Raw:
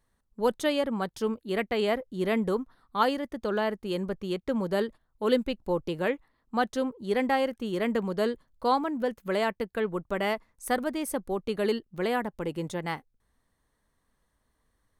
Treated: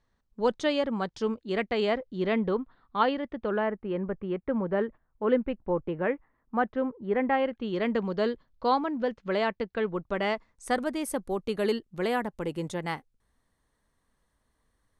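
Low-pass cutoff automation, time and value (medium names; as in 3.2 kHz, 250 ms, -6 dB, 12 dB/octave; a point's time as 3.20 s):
low-pass 24 dB/octave
1.81 s 6.4 kHz
2.56 s 3.7 kHz
3.29 s 3.7 kHz
3.70 s 2.2 kHz
7.20 s 2.2 kHz
7.83 s 5.2 kHz
10.06 s 5.2 kHz
11.01 s 12 kHz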